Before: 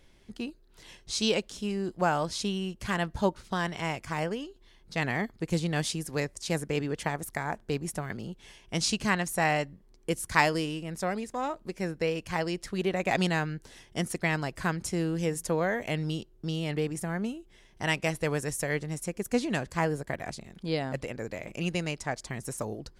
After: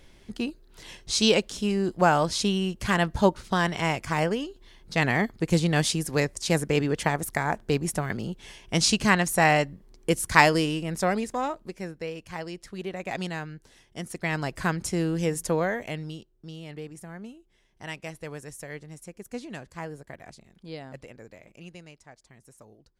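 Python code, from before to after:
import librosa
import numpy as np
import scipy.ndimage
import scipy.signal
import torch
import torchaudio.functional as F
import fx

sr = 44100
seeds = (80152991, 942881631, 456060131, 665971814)

y = fx.gain(x, sr, db=fx.line((11.26, 6.0), (11.98, -5.5), (14.02, -5.5), (14.47, 3.0), (15.57, 3.0), (16.32, -9.0), (21.09, -9.0), (22.08, -17.5)))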